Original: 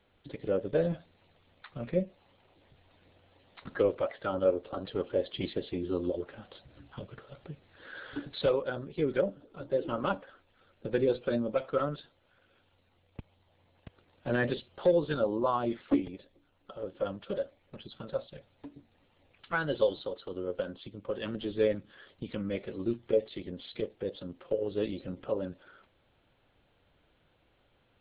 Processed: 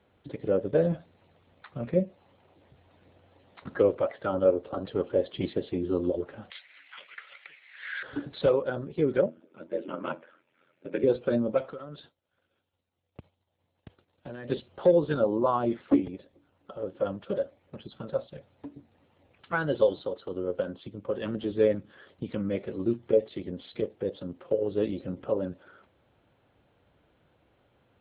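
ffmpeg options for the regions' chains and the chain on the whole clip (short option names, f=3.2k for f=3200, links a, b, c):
-filter_complex "[0:a]asettb=1/sr,asplit=3[a][b][c];[a]atrim=end=6.504[d];[b]atrim=start=6.5:end=8.03,asetpts=PTS-STARTPTS,afade=t=in:d=0.004:c=qsin,afade=t=out:st=1.526:d=0.004:c=qsin,highpass=f=2.1k:t=q:w=5.7,acontrast=51[e];[c]atrim=start=8.026[f];[d][e]acrossfade=d=0.004:c1=hsin:c2=qsin[g];[g][f]acrossfade=d=0.004:c1=qsin:c2=hsin,asettb=1/sr,asplit=3[h][i][j];[h]atrim=end=9.264[k];[i]atrim=start=9.26:end=11.04,asetpts=PTS-STARTPTS,afade=t=in:d=0.004:c=qsin,afade=t=out:st=1.776:d=0.004:c=qsin,aeval=exprs='val(0)*sin(2*PI*43*n/s)':c=same,highpass=240,equalizer=f=450:t=q:w=4:g=-5,equalizer=f=740:t=q:w=4:g=-8,equalizer=f=1.1k:t=q:w=4:g=-4,equalizer=f=2.3k:t=q:w=4:g=7,lowpass=f=3.6k:w=0.5412,lowpass=f=3.6k:w=1.3066[l];[j]atrim=start=11.036[m];[k][l]acrossfade=d=0.004:c1=hsin:c2=qsin[n];[n][m]acrossfade=d=0.004:c1=qsin:c2=hsin,asettb=1/sr,asplit=3[o][p][q];[o]atrim=end=11.694[r];[p]atrim=start=11.69:end=14.5,asetpts=PTS-STARTPTS,afade=t=in:d=0.004:c=qsin,afade=t=out:st=2.806:d=0.004:c=qsin,agate=range=-33dB:threshold=-59dB:ratio=3:release=100:detection=peak,equalizer=f=3.8k:t=o:w=1:g=6.5,acompressor=threshold=-42dB:ratio=5:attack=3.2:release=140:knee=1:detection=peak[s];[q]atrim=start=14.496[t];[r][s]acrossfade=d=0.004:c1=hsin:c2=qsin[u];[u][t]acrossfade=d=0.004:c1=qsin:c2=hsin,highpass=64,highshelf=f=2.3k:g=-10.5,volume=4.5dB"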